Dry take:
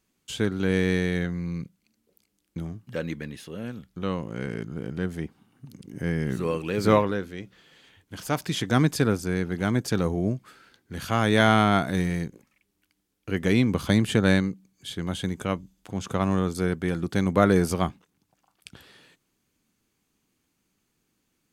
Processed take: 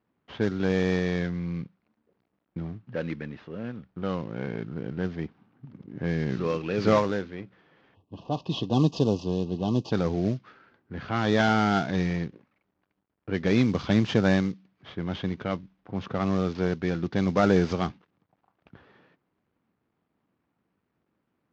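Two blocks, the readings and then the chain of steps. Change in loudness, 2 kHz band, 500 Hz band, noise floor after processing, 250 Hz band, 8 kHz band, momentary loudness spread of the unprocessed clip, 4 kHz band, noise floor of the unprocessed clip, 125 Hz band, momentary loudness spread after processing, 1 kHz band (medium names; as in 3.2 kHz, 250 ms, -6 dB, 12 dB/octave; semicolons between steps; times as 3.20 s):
-1.5 dB, -3.5 dB, -1.0 dB, -78 dBFS, -1.0 dB, no reading, 16 LU, -3.5 dB, -75 dBFS, -2.0 dB, 15 LU, -2.5 dB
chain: CVSD coder 32 kbps; high-pass 76 Hz; time-frequency box 7.95–9.92 s, 1.2–2.5 kHz -27 dB; level-controlled noise filter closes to 1.3 kHz, open at -18 dBFS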